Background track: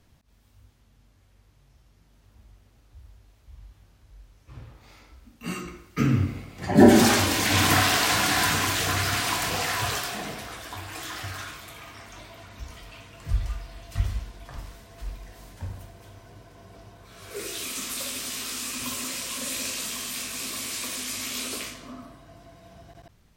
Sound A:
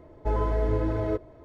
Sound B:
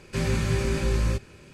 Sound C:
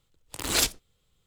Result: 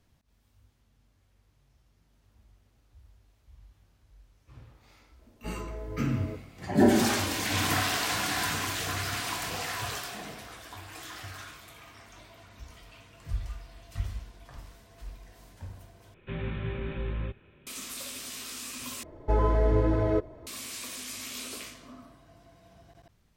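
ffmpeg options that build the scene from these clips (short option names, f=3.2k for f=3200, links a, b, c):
-filter_complex "[1:a]asplit=2[a][b];[0:a]volume=-7dB[c];[2:a]aresample=8000,aresample=44100[d];[b]acontrast=79[e];[c]asplit=3[f][g][h];[f]atrim=end=16.144[i];[d]atrim=end=1.53,asetpts=PTS-STARTPTS,volume=-9dB[j];[g]atrim=start=17.666:end=19.034[k];[e]atrim=end=1.44,asetpts=PTS-STARTPTS,volume=-5dB[l];[h]atrim=start=20.466[m];[a]atrim=end=1.44,asetpts=PTS-STARTPTS,volume=-13.5dB,afade=t=in:d=0.004:c=hsin,afade=t=out:st=1.436:d=0.004:c=hsin,adelay=5190[n];[i][j]acrossfade=d=0.004:c1=hsin:c2=hsin[o];[o][k]acrossfade=d=0.004:c1=hsin:c2=hsin[p];[p][l]acrossfade=d=0.004:c1=hsin:c2=hsin[q];[q][m]acrossfade=d=0.004:c1=hsin:c2=hsin[r];[r][n]amix=inputs=2:normalize=0"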